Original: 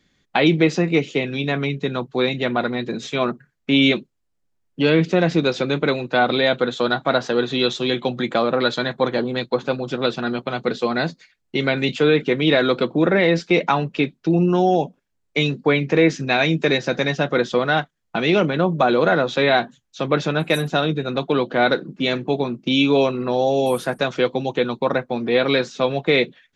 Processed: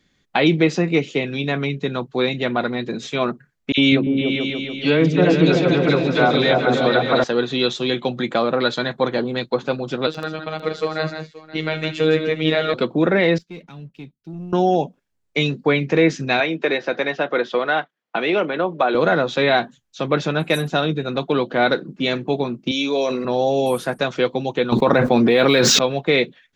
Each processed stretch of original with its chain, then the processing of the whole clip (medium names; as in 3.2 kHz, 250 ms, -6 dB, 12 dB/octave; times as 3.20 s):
3.72–7.24 s: phase dispersion lows, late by 56 ms, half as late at 2 kHz + delay with an opening low-pass 145 ms, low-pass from 200 Hz, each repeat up 2 oct, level 0 dB
10.07–12.74 s: robot voice 157 Hz + multi-tap echo 75/161/526 ms -15.5/-7.5/-17.5 dB
13.38–14.53 s: amplifier tone stack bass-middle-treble 10-0-1 + waveshaping leveller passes 1
16.40–18.95 s: band-pass 340–3200 Hz + three bands compressed up and down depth 40%
22.71–23.25 s: cabinet simulation 350–8900 Hz, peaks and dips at 350 Hz -7 dB, 840 Hz -6 dB, 1.3 kHz -9 dB, 2.8 kHz -8 dB, 6 kHz +8 dB + decay stretcher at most 32 dB/s
24.72–25.79 s: median filter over 3 samples + level flattener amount 100%
whole clip: none